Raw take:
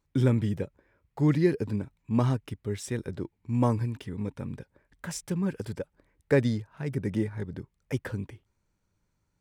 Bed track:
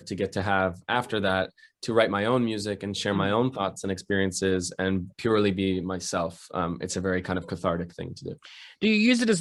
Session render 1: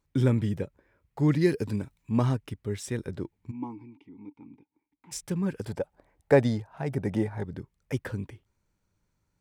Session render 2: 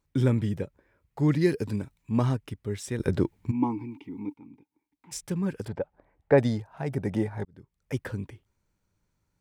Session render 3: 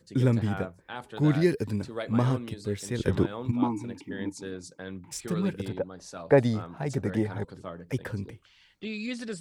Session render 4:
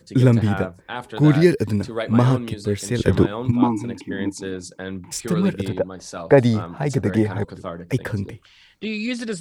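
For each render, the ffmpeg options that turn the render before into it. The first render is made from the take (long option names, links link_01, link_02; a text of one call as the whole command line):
ffmpeg -i in.wav -filter_complex "[0:a]asettb=1/sr,asplit=3[link_01][link_02][link_03];[link_01]atrim=end=1.414[link_04];[link_02]atrim=start=1.41:end=2.11,asetpts=PTS-STARTPTS,afade=type=in:duration=0.004:curve=qsin,afade=type=out:start_time=0.696:duration=0.004:curve=qsin,highshelf=frequency=3200:gain=8.5[link_05];[link_03]atrim=start=2.106[link_06];[link_04][link_05]acrossfade=duration=0.004:curve1=hsin:curve2=qsin[link_07];[link_07][link_06]acrossfade=duration=0.004:curve1=qsin:curve2=hsin,asplit=3[link_08][link_09][link_10];[link_08]afade=type=out:start_time=3.5:duration=0.02[link_11];[link_09]asplit=3[link_12][link_13][link_14];[link_12]bandpass=frequency=300:width_type=q:width=8,volume=0dB[link_15];[link_13]bandpass=frequency=870:width_type=q:width=8,volume=-6dB[link_16];[link_14]bandpass=frequency=2240:width_type=q:width=8,volume=-9dB[link_17];[link_15][link_16][link_17]amix=inputs=3:normalize=0,afade=type=in:start_time=3.5:duration=0.02,afade=type=out:start_time=5.11:duration=0.02[link_18];[link_10]afade=type=in:start_time=5.11:duration=0.02[link_19];[link_11][link_18][link_19]amix=inputs=3:normalize=0,asettb=1/sr,asplit=3[link_20][link_21][link_22];[link_20]atrim=end=5.674[link_23];[link_21]atrim=start=5.67:end=7.45,asetpts=PTS-STARTPTS,afade=type=in:duration=0.004:curve=qsin,afade=type=out:start_time=1.776:duration=0.004:curve=qsin,equalizer=frequency=740:width_type=o:width=0.7:gain=13.5[link_24];[link_22]atrim=start=7.446[link_25];[link_23][link_24]acrossfade=duration=0.004:curve1=hsin:curve2=qsin[link_26];[link_26][link_25]acrossfade=duration=0.004:curve1=qsin:curve2=hsin" out.wav
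ffmpeg -i in.wav -filter_complex "[0:a]asettb=1/sr,asplit=3[link_01][link_02][link_03];[link_01]atrim=end=5.684[link_04];[link_02]atrim=start=5.68:end=6.38,asetpts=PTS-STARTPTS,afade=type=in:duration=0.004:curve=qsin,afade=type=out:start_time=0.696:duration=0.004:curve=qsin,lowpass=2500[link_05];[link_03]atrim=start=6.376[link_06];[link_04][link_05]acrossfade=duration=0.004:curve1=hsin:curve2=qsin[link_07];[link_07][link_06]acrossfade=duration=0.004:curve1=qsin:curve2=hsin,asplit=4[link_08][link_09][link_10][link_11];[link_08]atrim=end=3.002[link_12];[link_09]atrim=start=2.998:end=4.342,asetpts=PTS-STARTPTS,volume=10dB[link_13];[link_10]atrim=start=4.338:end=7.45,asetpts=PTS-STARTPTS,afade=type=out:start_time=3.108:duration=0.004:curve=hsin[link_14];[link_11]atrim=start=7.45,asetpts=PTS-STARTPTS,afade=type=in:duration=0.52[link_15];[link_12][link_13]acrossfade=duration=0.004:curve1=hsin:curve2=hsin[link_16];[link_14][link_15]concat=n=2:v=0:a=1[link_17];[link_16][link_17]acrossfade=duration=0.004:curve1=hsin:curve2=hsin" out.wav
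ffmpeg -i in.wav -i bed.wav -filter_complex "[1:a]volume=-13.5dB[link_01];[0:a][link_01]amix=inputs=2:normalize=0" out.wav
ffmpeg -i in.wav -af "volume=8.5dB,alimiter=limit=-3dB:level=0:latency=1" out.wav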